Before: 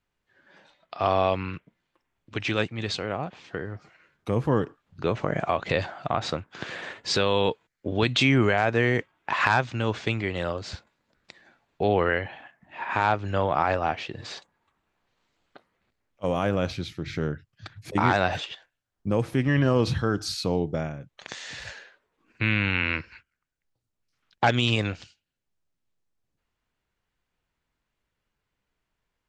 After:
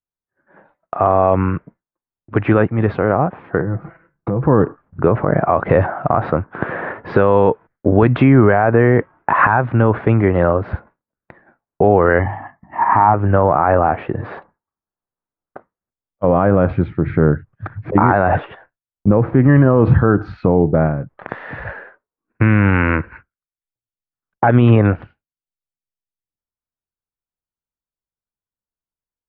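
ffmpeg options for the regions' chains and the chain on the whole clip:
ffmpeg -i in.wav -filter_complex "[0:a]asettb=1/sr,asplit=3[link_01][link_02][link_03];[link_01]atrim=end=3.604[link_04];[link_02]atrim=start=3.6:end=4.43,asetpts=PTS-STARTPTS,afade=type=in:duration=0.004:curve=qsin,afade=type=out:start_time=0.826:duration=0.004:curve=qsin,lowshelf=frequency=240:gain=9.5,aecho=1:1:6:0.56,atrim=end_sample=36603,acompressor=threshold=-33dB:ratio=5:attack=3.2:release=140:knee=1:detection=peak[link_05];[link_03]atrim=start=4.426[link_06];[link_04][link_05]acrossfade=duration=0.004:curve1=hsin:curve2=qsin[link_07];[link_07][link_06]acrossfade=duration=0.004:curve1=qsin:curve2=hsin,asettb=1/sr,asplit=3[link_08][link_09][link_10];[link_08]atrim=end=12.194[link_11];[link_09]atrim=start=12.19:end=13.14,asetpts=PTS-STARTPTS,afade=type=in:duration=0.004:curve=qsin,afade=type=out:start_time=0.946:duration=0.004:curve=qsin,highshelf=frequency=3800:gain=-9.5,bandreject=frequency=50:width_type=h:width=6,bandreject=frequency=100:width_type=h:width=6,bandreject=frequency=150:width_type=h:width=6,bandreject=frequency=200:width_type=h:width=6,bandreject=frequency=250:width_type=h:width=6,aecho=1:1:1:0.72,atrim=end_sample=41895[link_12];[link_10]atrim=start=13.136[link_13];[link_11][link_12]acrossfade=duration=0.004:curve1=hsin:curve2=qsin[link_14];[link_14][link_13]acrossfade=duration=0.004:curve1=qsin:curve2=hsin,agate=range=-33dB:threshold=-49dB:ratio=3:detection=peak,lowpass=frequency=1500:width=0.5412,lowpass=frequency=1500:width=1.3066,alimiter=level_in=17dB:limit=-1dB:release=50:level=0:latency=1,volume=-1dB" out.wav

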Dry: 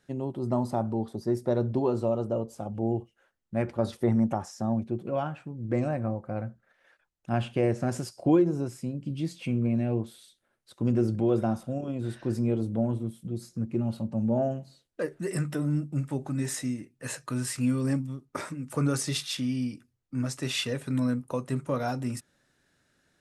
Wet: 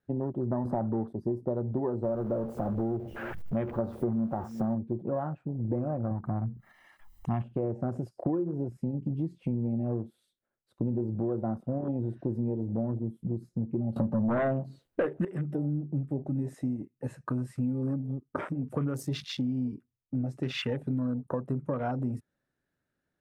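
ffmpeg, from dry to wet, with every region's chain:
ffmpeg -i in.wav -filter_complex "[0:a]asettb=1/sr,asplit=3[link_01][link_02][link_03];[link_01]atrim=end=0.654[link_04];[link_02]atrim=start=0.65:end=1.13,asetpts=PTS-STARTPTS,afade=type=in:duration=0.004:curve=qsin,afade=type=out:start_time=0.476:duration=0.004:curve=qsin,highpass=90,aeval=exprs='0.188*sin(PI/2*1.41*val(0)/0.188)':channel_layout=same[link_05];[link_03]atrim=start=1.126[link_06];[link_04][link_05]acrossfade=duration=0.004:curve1=hsin:curve2=qsin[link_07];[link_07][link_06]acrossfade=duration=0.004:curve1=qsin:curve2=hsin,asettb=1/sr,asplit=3[link_08][link_09][link_10];[link_08]atrim=end=2.044[link_11];[link_09]atrim=start=2.04:end=4.75,asetpts=PTS-STARTPTS,afade=type=in:duration=0.004:curve=qsin,afade=type=out:start_time=2.706:duration=0.004:curve=qsin,aeval=exprs='val(0)+0.5*0.02*sgn(val(0))':channel_layout=same,asplit=2[link_12][link_13];[link_13]adelay=14,volume=-13dB[link_14];[link_12][link_14]amix=inputs=2:normalize=0,atrim=end_sample=119511,aecho=1:1:355:0.075,atrim=end_sample=119511[link_15];[link_10]atrim=start=4.746[link_16];[link_11][link_15]acrossfade=duration=0.004:curve1=hsin:curve2=qsin[link_17];[link_17][link_16]acrossfade=duration=0.004:curve1=qsin:curve2=hsin,asettb=1/sr,asplit=3[link_18][link_19][link_20];[link_18]atrim=end=6.114[link_21];[link_19]atrim=start=6.11:end=7.42,asetpts=PTS-STARTPTS,afade=type=in:duration=0.004:curve=qsin,afade=type=out:start_time=1.306:duration=0.004:curve=qsin,highshelf=frequency=3400:gain=10.5,aecho=1:1:1:0.91,atrim=end_sample=57771,acompressor=mode=upward:threshold=-29dB:ratio=2.5:attack=3.2:release=140:knee=2.83:detection=peak[link_22];[link_20]atrim=start=7.416[link_23];[link_21][link_22]acrossfade=duration=0.004:curve1=hsin:curve2=qsin[link_24];[link_24][link_23]acrossfade=duration=0.004:curve1=qsin:curve2=hsin,asettb=1/sr,asplit=3[link_25][link_26][link_27];[link_25]atrim=end=13.964[link_28];[link_26]atrim=start=13.96:end=15.25,asetpts=PTS-STARTPTS,afade=type=in:duration=0.004:curve=qsin,afade=type=out:start_time=1.286:duration=0.004:curve=qsin,lowshelf=frequency=410:gain=-4.5,acontrast=87,aeval=exprs='0.282*sin(PI/2*2.51*val(0)/0.282)':channel_layout=same[link_29];[link_27]atrim=start=15.246[link_30];[link_28][link_29]acrossfade=duration=0.004:curve1=hsin:curve2=qsin[link_31];[link_31][link_30]acrossfade=duration=0.004:curve1=qsin:curve2=hsin,afwtdn=0.0126,equalizer=frequency=6400:width_type=o:width=2.6:gain=-12,acompressor=threshold=-33dB:ratio=6,volume=5.5dB" out.wav

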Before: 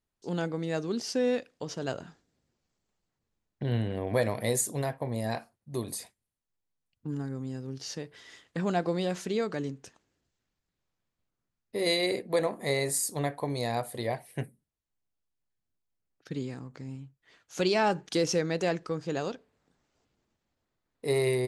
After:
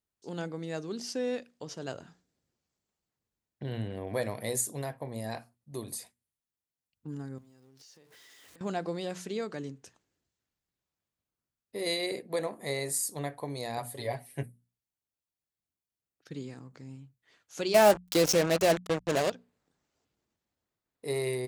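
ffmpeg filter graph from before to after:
ffmpeg -i in.wav -filter_complex "[0:a]asettb=1/sr,asplit=3[link_01][link_02][link_03];[link_01]atrim=end=7.384[link_04];[link_02]atrim=start=7.38:end=8.61,asetpts=PTS-STARTPTS,afade=type=in:duration=0.004:curve=qsin,afade=type=out:start_time=1.226:duration=0.004:curve=qsin,aeval=exprs='val(0)+0.5*0.00398*sgn(val(0))':channel_layout=same,bass=frequency=250:gain=-6,treble=frequency=4000:gain=2,acompressor=threshold=-50dB:ratio=12:attack=3.2:release=140:knee=1:detection=peak[link_05];[link_03]atrim=start=8.606[link_06];[link_04][link_05]acrossfade=duration=0.004:curve1=hsin:curve2=qsin[link_07];[link_07][link_06]acrossfade=duration=0.004:curve1=qsin:curve2=hsin,asettb=1/sr,asplit=3[link_08][link_09][link_10];[link_08]atrim=end=13.774[link_11];[link_09]atrim=start=13.77:end=14.43,asetpts=PTS-STARTPTS,afade=type=in:duration=0.004:curve=qsin,afade=type=out:start_time=0.656:duration=0.004:curve=qsin,aecho=1:1:7.2:0.79,atrim=end_sample=29106,bandreject=frequency=84.1:width_type=h:width=4,bandreject=frequency=168.2:width_type=h:width=4,bandreject=frequency=252.3:width_type=h:width=4[link_12];[link_10]atrim=start=14.426[link_13];[link_11][link_12]acrossfade=duration=0.004:curve1=hsin:curve2=qsin[link_14];[link_14][link_13]acrossfade=duration=0.004:curve1=qsin:curve2=hsin,asettb=1/sr,asplit=3[link_15][link_16][link_17];[link_15]atrim=end=17.744[link_18];[link_16]atrim=start=17.74:end=19.3,asetpts=PTS-STARTPTS,afade=type=in:duration=0.004:curve=qsin,afade=type=out:start_time=1.556:duration=0.004:curve=qsin,equalizer=frequency=620:width_type=o:width=0.22:gain=12,acontrast=62,acrusher=bits=3:mix=0:aa=0.5[link_19];[link_17]atrim=start=19.296[link_20];[link_18][link_19]acrossfade=duration=0.004:curve1=hsin:curve2=qsin[link_21];[link_21][link_20]acrossfade=duration=0.004:curve1=qsin:curve2=hsin,highpass=41,highshelf=frequency=6600:gain=5.5,bandreject=frequency=60:width_type=h:width=6,bandreject=frequency=120:width_type=h:width=6,bandreject=frequency=180:width_type=h:width=6,bandreject=frequency=240:width_type=h:width=6,volume=-5dB" out.wav

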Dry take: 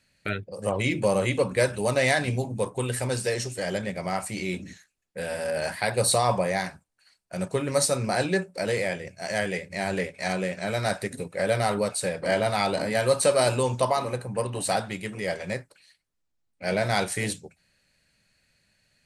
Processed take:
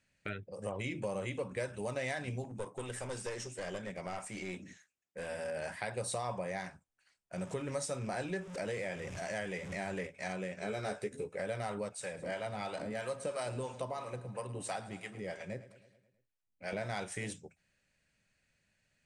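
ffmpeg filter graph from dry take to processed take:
ffmpeg -i in.wav -filter_complex "[0:a]asettb=1/sr,asplit=3[link_01][link_02][link_03];[link_01]atrim=end=2.444[link_04];[link_02]atrim=start=2.44:end=5.29,asetpts=PTS-STARTPTS,afade=type=in:duration=0.004:curve=qsin,afade=type=out:start_time=2.846:duration=0.004:curve=qsin,highpass=frequency=180:poles=1,aeval=exprs='clip(val(0),-1,0.0282)':channel_layout=same[link_05];[link_03]atrim=start=5.286[link_06];[link_04][link_05]acrossfade=duration=0.004:curve1=hsin:curve2=qsin[link_07];[link_07][link_06]acrossfade=duration=0.004:curve1=qsin:curve2=hsin,asettb=1/sr,asplit=3[link_08][link_09][link_10];[link_08]atrim=end=7.384[link_11];[link_09]atrim=start=7.38:end=10.07,asetpts=PTS-STARTPTS,afade=type=in:duration=0.004:curve=qsin,afade=type=out:start_time=2.686:duration=0.004:curve=qsin,aeval=exprs='val(0)+0.5*0.0133*sgn(val(0))':channel_layout=same,acompressor=mode=upward:threshold=-27dB:ratio=2.5:attack=3.2:release=140:knee=2.83:detection=peak[link_12];[link_10]atrim=start=10.066[link_13];[link_11][link_12]acrossfade=duration=0.004:curve1=hsin:curve2=qsin[link_14];[link_14][link_13]acrossfade=duration=0.004:curve1=qsin:curve2=hsin,asettb=1/sr,asplit=3[link_15][link_16][link_17];[link_15]atrim=end=10.604[link_18];[link_16]atrim=start=10.6:end=11.37,asetpts=PTS-STARTPTS,afade=type=in:duration=0.004:curve=qsin,afade=type=out:start_time=0.766:duration=0.004:curve=qsin,equalizer=frequency=420:width=6.2:gain=11,bandreject=frequency=1900:width=16,asplit=2[link_19][link_20];[link_20]adelay=14,volume=-5dB[link_21];[link_19][link_21]amix=inputs=2:normalize=0,atrim=end_sample=33957[link_22];[link_17]atrim=start=11.366[link_23];[link_18][link_22]acrossfade=duration=0.004:curve1=hsin:curve2=qsin[link_24];[link_24][link_23]acrossfade=duration=0.004:curve1=qsin:curve2=hsin,asettb=1/sr,asplit=3[link_25][link_26][link_27];[link_25]atrim=end=11.894[link_28];[link_26]atrim=start=11.89:end=16.73,asetpts=PTS-STARTPTS,afade=type=in:duration=0.004:curve=qsin,afade=type=out:start_time=4.836:duration=0.004:curve=qsin,acrossover=split=580[link_29][link_30];[link_29]aeval=exprs='val(0)*(1-0.7/2+0.7/2*cos(2*PI*3*n/s))':channel_layout=same[link_31];[link_30]aeval=exprs='val(0)*(1-0.7/2-0.7/2*cos(2*PI*3*n/s))':channel_layout=same[link_32];[link_31][link_32]amix=inputs=2:normalize=0,aecho=1:1:107|214|321|428|535|642:0.141|0.0848|0.0509|0.0305|0.0183|0.011,atrim=end_sample=213444[link_33];[link_27]atrim=start=16.726[link_34];[link_28][link_33]acrossfade=duration=0.004:curve1=hsin:curve2=qsin[link_35];[link_35][link_34]acrossfade=duration=0.004:curve1=qsin:curve2=hsin,lowpass=frequency=8800:width=0.5412,lowpass=frequency=8800:width=1.3066,equalizer=frequency=4300:width=6.4:gain=-11,acompressor=threshold=-29dB:ratio=2.5,volume=-7.5dB" out.wav

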